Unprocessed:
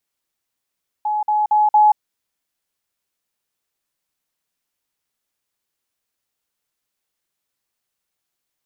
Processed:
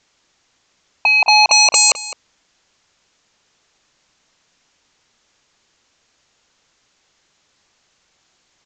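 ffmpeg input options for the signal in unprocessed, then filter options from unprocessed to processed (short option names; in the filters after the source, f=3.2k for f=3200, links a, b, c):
-f lavfi -i "aevalsrc='pow(10,(-17.5+3*floor(t/0.23))/20)*sin(2*PI*846*t)*clip(min(mod(t,0.23),0.18-mod(t,0.23))/0.005,0,1)':d=0.92:s=44100"
-filter_complex "[0:a]aresample=16000,aeval=exprs='0.398*sin(PI/2*7.08*val(0)/0.398)':c=same,aresample=44100,asplit=2[a][b];[b]adelay=209.9,volume=-14dB,highshelf=f=4k:g=-4.72[c];[a][c]amix=inputs=2:normalize=0"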